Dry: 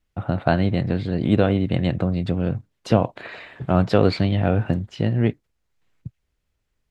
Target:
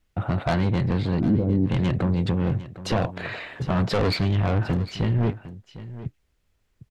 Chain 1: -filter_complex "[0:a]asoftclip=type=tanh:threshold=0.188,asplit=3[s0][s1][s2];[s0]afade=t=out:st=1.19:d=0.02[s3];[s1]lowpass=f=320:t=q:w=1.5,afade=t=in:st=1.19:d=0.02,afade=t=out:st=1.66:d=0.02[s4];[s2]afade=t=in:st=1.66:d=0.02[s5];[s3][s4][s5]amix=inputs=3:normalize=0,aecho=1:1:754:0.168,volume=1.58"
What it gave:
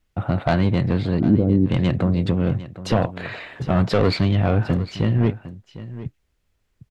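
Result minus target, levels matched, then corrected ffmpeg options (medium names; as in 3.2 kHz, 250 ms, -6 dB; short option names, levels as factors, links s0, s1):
saturation: distortion -5 dB
-filter_complex "[0:a]asoftclip=type=tanh:threshold=0.0841,asplit=3[s0][s1][s2];[s0]afade=t=out:st=1.19:d=0.02[s3];[s1]lowpass=f=320:t=q:w=1.5,afade=t=in:st=1.19:d=0.02,afade=t=out:st=1.66:d=0.02[s4];[s2]afade=t=in:st=1.66:d=0.02[s5];[s3][s4][s5]amix=inputs=3:normalize=0,aecho=1:1:754:0.168,volume=1.58"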